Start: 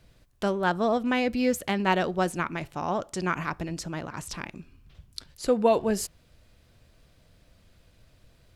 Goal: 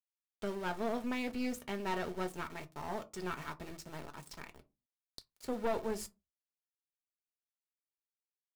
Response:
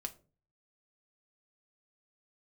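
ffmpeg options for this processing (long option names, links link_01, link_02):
-filter_complex "[0:a]aeval=exprs='val(0)*gte(abs(val(0)),0.0178)':channel_layout=same[link_01];[1:a]atrim=start_sample=2205,asetrate=79380,aresample=44100[link_02];[link_01][link_02]afir=irnorm=-1:irlink=0,aeval=exprs='(tanh(22.4*val(0)+0.65)-tanh(0.65))/22.4':channel_layout=same,volume=-1.5dB"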